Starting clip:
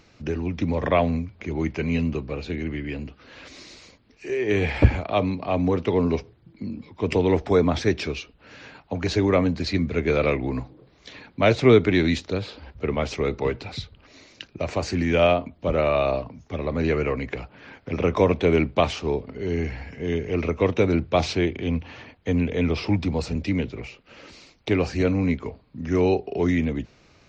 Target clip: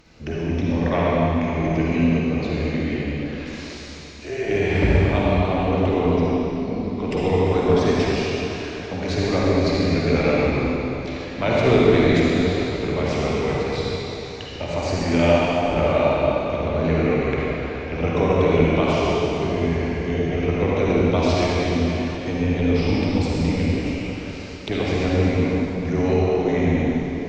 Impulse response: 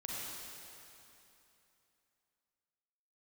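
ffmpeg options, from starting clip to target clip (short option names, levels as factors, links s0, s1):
-filter_complex "[0:a]asplit=2[s0][s1];[s1]acompressor=threshold=0.0316:ratio=6,volume=1.26[s2];[s0][s2]amix=inputs=2:normalize=0,tremolo=f=280:d=0.571[s3];[1:a]atrim=start_sample=2205,asetrate=35721,aresample=44100[s4];[s3][s4]afir=irnorm=-1:irlink=0"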